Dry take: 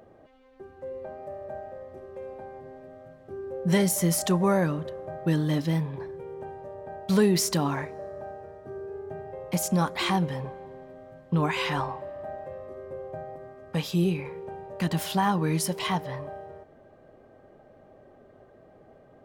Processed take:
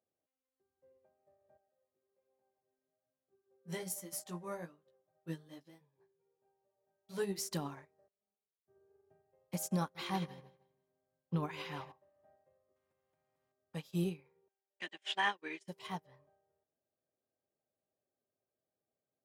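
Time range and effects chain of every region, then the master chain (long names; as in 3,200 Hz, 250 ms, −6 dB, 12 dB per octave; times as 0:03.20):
0:01.57–0:07.49: low-shelf EQ 110 Hz −9.5 dB + chorus effect 1.2 Hz, delay 15 ms, depth 3.5 ms
0:08.08–0:08.68: flutter between parallel walls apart 5.9 metres, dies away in 0.22 s + downward expander −38 dBFS + stiff-string resonator 200 Hz, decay 0.23 s, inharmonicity 0.03
0:09.79–0:11.92: parametric band 8,000 Hz −12.5 dB 0.23 octaves + repeating echo 158 ms, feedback 46%, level −11 dB
0:12.76–0:13.52: downward compressor 12 to 1, threshold −38 dBFS + every bin compressed towards the loudest bin 2 to 1
0:14.48–0:15.68: elliptic band-pass filter 290–7,800 Hz + flat-topped bell 2,400 Hz +11.5 dB 1.3 octaves + noise gate −31 dBFS, range −17 dB
whole clip: high-pass filter 74 Hz; high-shelf EQ 4,700 Hz +6 dB; expander for the loud parts 2.5 to 1, over −41 dBFS; level −8.5 dB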